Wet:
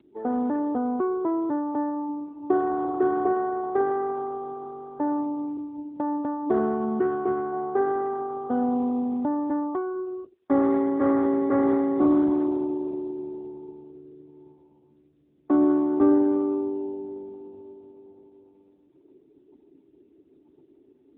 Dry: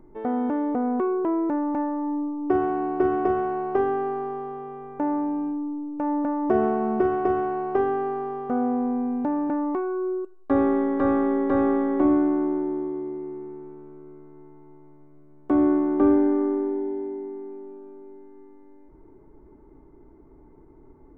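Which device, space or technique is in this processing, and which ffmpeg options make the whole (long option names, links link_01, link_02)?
mobile call with aggressive noise cancelling: -filter_complex "[0:a]asettb=1/sr,asplit=3[link_01][link_02][link_03];[link_01]atrim=end=5.574[link_04];[link_02]atrim=start=5.57:end=7.53,asetpts=PTS-STARTPTS,afade=type=in:duration=0.004:curve=qsin,afade=type=out:start_time=1.956:duration=0.004:curve=qsin,adynamicequalizer=threshold=0.0141:dfrequency=630:dqfactor=1.7:tfrequency=630:tqfactor=1.7:attack=5:release=100:ratio=0.375:range=3.5:mode=cutabove:tftype=bell[link_05];[link_03]atrim=start=7.526[link_06];[link_04][link_05]acrossfade=duration=0.004:curve1=hsin:curve2=qsin[link_07];[link_07][link_06]acrossfade=duration=0.004:curve1=qsin:curve2=hsin,highpass=120,afftdn=noise_reduction=17:noise_floor=-44" -ar 8000 -c:a libopencore_amrnb -b:a 10200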